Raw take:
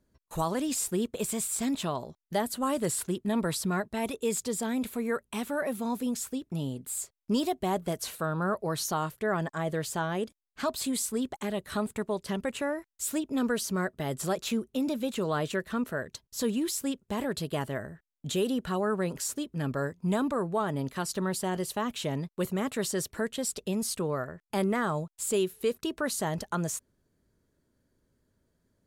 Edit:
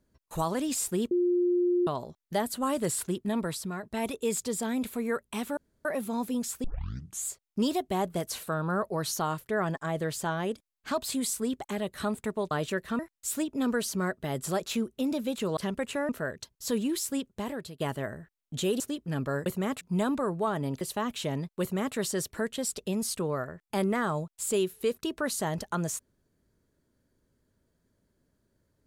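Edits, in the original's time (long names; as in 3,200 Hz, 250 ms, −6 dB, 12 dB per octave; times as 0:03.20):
0:01.11–0:01.87: beep over 354 Hz −22 dBFS
0:03.19–0:03.83: fade out, to −8.5 dB
0:05.57: splice in room tone 0.28 s
0:06.36: tape start 0.63 s
0:12.23–0:12.75: swap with 0:15.33–0:15.81
0:17.01–0:17.52: fade out, to −15.5 dB
0:18.52–0:19.28: remove
0:20.94–0:21.61: remove
0:22.41–0:22.76: duplicate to 0:19.94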